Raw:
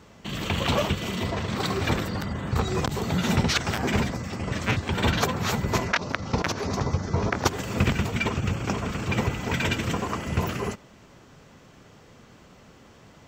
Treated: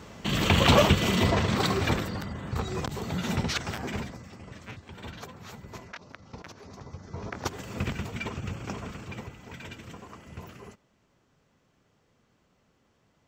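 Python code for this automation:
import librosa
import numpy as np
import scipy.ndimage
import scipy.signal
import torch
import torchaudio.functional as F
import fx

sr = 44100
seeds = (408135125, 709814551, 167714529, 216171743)

y = fx.gain(x, sr, db=fx.line((1.31, 5.0), (2.33, -6.0), (3.64, -6.0), (4.75, -18.5), (6.83, -18.5), (7.49, -8.5), (8.85, -8.5), (9.32, -17.0)))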